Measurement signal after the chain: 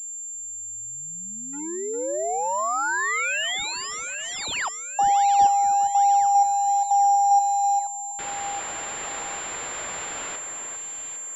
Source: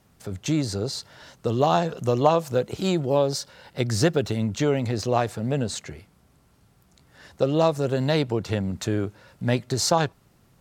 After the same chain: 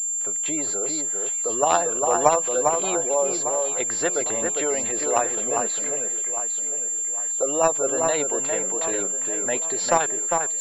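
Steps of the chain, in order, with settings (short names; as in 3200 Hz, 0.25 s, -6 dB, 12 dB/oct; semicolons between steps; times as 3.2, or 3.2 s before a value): HPF 560 Hz 12 dB/oct; in parallel at -11 dB: companded quantiser 2-bit; on the sum: spectral gate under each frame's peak -25 dB strong; echo with dull and thin repeats by turns 0.402 s, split 2300 Hz, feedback 62%, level -4 dB; pulse-width modulation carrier 7300 Hz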